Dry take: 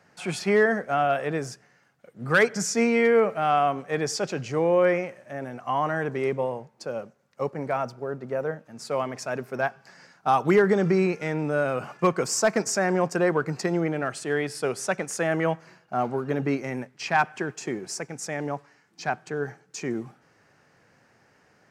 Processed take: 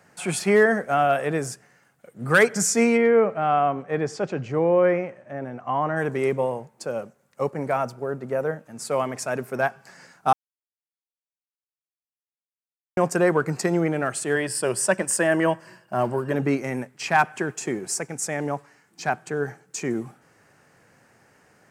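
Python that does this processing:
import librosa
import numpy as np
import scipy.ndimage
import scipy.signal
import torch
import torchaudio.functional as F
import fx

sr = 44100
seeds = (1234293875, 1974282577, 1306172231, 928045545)

y = fx.spacing_loss(x, sr, db_at_10k=23, at=(2.96, 5.96), fade=0.02)
y = fx.ripple_eq(y, sr, per_octave=1.3, db=8, at=(14.35, 16.35))
y = fx.edit(y, sr, fx.silence(start_s=10.33, length_s=2.64), tone=tone)
y = fx.high_shelf_res(y, sr, hz=6800.0, db=6.5, q=1.5)
y = y * librosa.db_to_amplitude(3.0)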